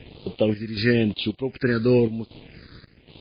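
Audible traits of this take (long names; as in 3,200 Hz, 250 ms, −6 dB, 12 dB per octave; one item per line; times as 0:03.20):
a quantiser's noise floor 8 bits, dither none
phaser sweep stages 6, 1 Hz, lowest notch 760–1,700 Hz
chopped level 1.3 Hz, depth 65%, duty 70%
MP3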